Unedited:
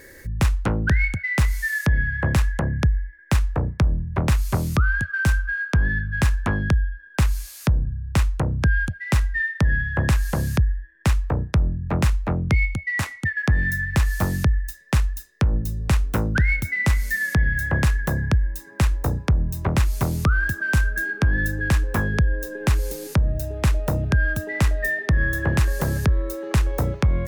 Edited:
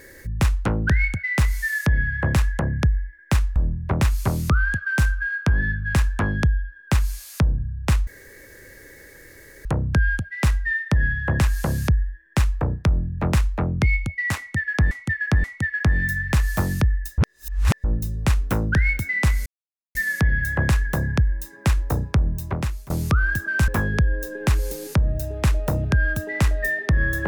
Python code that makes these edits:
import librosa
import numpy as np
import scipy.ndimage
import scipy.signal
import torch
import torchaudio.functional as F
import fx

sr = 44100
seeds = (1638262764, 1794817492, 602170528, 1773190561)

y = fx.edit(x, sr, fx.cut(start_s=3.56, length_s=0.27),
    fx.insert_room_tone(at_s=8.34, length_s=1.58),
    fx.repeat(start_s=13.07, length_s=0.53, count=3),
    fx.reverse_span(start_s=14.81, length_s=0.66),
    fx.insert_silence(at_s=17.09, length_s=0.49),
    fx.fade_out_to(start_s=19.23, length_s=0.81, curve='qsin', floor_db=-23.0),
    fx.cut(start_s=20.82, length_s=1.06), tone=tone)